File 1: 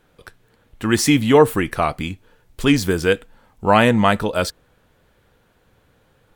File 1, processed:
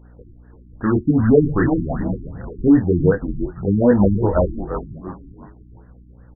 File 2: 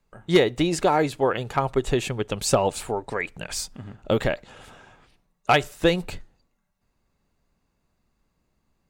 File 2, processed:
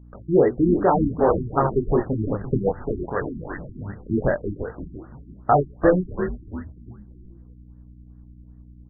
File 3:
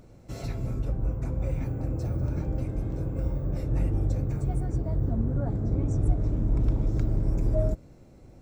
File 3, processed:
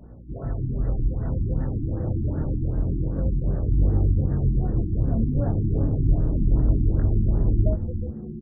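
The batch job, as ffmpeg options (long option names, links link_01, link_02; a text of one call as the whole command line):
ffmpeg -i in.wav -filter_complex "[0:a]asplit=2[link_01][link_02];[link_02]asoftclip=type=hard:threshold=-18.5dB,volume=-7dB[link_03];[link_01][link_03]amix=inputs=2:normalize=0,flanger=delay=20:depth=8:speed=0.27,aeval=exprs='val(0)+0.00398*(sin(2*PI*60*n/s)+sin(2*PI*2*60*n/s)/2+sin(2*PI*3*60*n/s)/3+sin(2*PI*4*60*n/s)/4+sin(2*PI*5*60*n/s)/5)':channel_layout=same,asplit=5[link_04][link_05][link_06][link_07][link_08];[link_05]adelay=341,afreqshift=-130,volume=-9dB[link_09];[link_06]adelay=682,afreqshift=-260,volume=-17.2dB[link_10];[link_07]adelay=1023,afreqshift=-390,volume=-25.4dB[link_11];[link_08]adelay=1364,afreqshift=-520,volume=-33.5dB[link_12];[link_04][link_09][link_10][link_11][link_12]amix=inputs=5:normalize=0,afftfilt=real='re*lt(b*sr/1024,360*pow(2000/360,0.5+0.5*sin(2*PI*2.6*pts/sr)))':imag='im*lt(b*sr/1024,360*pow(2000/360,0.5+0.5*sin(2*PI*2.6*pts/sr)))':win_size=1024:overlap=0.75,volume=3.5dB" out.wav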